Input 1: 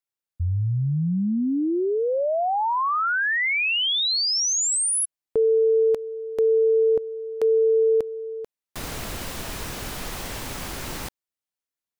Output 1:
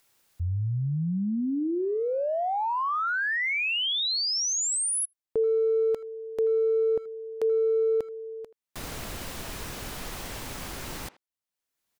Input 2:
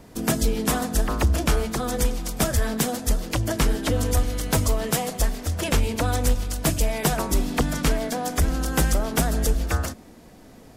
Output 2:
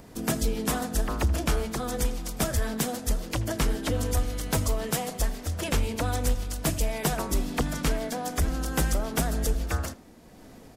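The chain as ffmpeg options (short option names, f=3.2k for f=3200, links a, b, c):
-filter_complex "[0:a]acompressor=mode=upward:threshold=-33dB:ratio=2.5:attack=0.2:release=745:knee=2.83:detection=peak,asplit=2[a][b];[b]adelay=80,highpass=300,lowpass=3.4k,asoftclip=type=hard:threshold=-22.5dB,volume=-17dB[c];[a][c]amix=inputs=2:normalize=0,volume=-4.5dB"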